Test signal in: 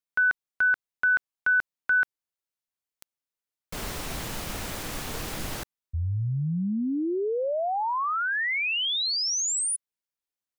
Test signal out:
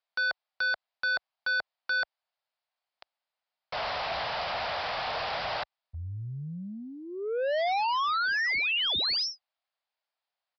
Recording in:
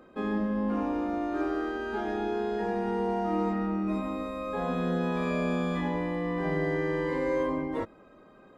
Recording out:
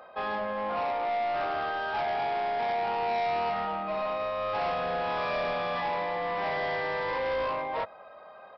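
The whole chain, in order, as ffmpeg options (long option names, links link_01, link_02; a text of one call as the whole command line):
ffmpeg -i in.wav -af "highpass=55,lowshelf=frequency=460:width_type=q:width=3:gain=-13.5,aresample=11025,asoftclip=type=tanh:threshold=-32.5dB,aresample=44100,volume=6dB" out.wav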